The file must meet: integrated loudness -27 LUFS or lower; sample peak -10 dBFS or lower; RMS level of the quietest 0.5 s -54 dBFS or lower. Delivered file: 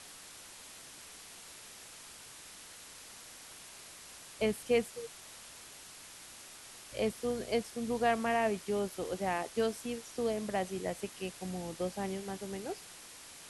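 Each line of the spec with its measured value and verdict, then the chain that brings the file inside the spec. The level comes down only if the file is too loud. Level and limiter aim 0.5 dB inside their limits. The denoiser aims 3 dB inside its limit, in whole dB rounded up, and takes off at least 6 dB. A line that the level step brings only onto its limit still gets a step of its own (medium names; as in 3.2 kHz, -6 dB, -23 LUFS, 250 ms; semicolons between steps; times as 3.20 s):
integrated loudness -35.0 LUFS: pass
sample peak -17.5 dBFS: pass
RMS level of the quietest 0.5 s -52 dBFS: fail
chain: noise reduction 6 dB, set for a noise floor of -52 dBFS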